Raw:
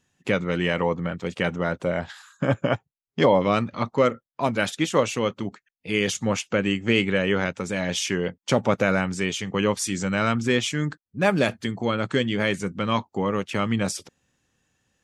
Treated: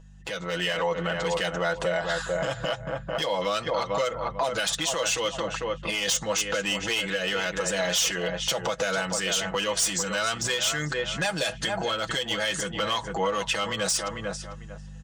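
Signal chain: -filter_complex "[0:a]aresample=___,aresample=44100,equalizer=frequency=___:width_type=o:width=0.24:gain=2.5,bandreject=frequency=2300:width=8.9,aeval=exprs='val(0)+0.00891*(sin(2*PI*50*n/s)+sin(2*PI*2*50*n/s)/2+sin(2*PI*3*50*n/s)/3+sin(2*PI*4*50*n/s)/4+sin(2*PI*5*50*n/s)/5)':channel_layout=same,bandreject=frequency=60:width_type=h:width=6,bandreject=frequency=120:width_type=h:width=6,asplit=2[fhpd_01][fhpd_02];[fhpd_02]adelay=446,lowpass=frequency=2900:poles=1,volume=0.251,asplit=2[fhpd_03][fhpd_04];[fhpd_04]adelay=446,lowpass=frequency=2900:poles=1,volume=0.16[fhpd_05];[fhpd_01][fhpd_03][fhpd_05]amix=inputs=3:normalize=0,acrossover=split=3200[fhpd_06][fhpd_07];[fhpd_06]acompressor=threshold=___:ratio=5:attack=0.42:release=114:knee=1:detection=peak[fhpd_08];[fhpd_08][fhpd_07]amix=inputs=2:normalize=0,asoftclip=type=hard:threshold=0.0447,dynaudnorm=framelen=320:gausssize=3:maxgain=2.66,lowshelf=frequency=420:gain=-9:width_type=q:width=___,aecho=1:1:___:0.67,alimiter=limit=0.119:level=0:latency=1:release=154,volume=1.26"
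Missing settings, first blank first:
22050, 1500, 0.0282, 1.5, 6.1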